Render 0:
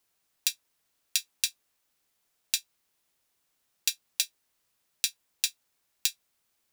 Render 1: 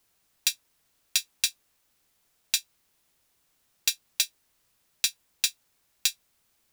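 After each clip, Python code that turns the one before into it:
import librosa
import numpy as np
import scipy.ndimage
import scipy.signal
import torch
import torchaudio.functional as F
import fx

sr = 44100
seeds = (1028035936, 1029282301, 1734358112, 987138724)

y = fx.low_shelf(x, sr, hz=170.0, db=6.5)
y = 10.0 ** (-15.5 / 20.0) * np.tanh(y / 10.0 ** (-15.5 / 20.0))
y = y * librosa.db_to_amplitude(5.0)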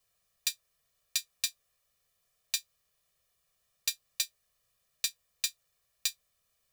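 y = x + 0.96 * np.pad(x, (int(1.7 * sr / 1000.0), 0))[:len(x)]
y = y * librosa.db_to_amplitude(-9.0)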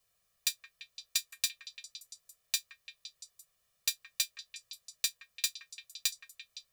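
y = fx.echo_stepped(x, sr, ms=171, hz=1500.0, octaves=0.7, feedback_pct=70, wet_db=-7)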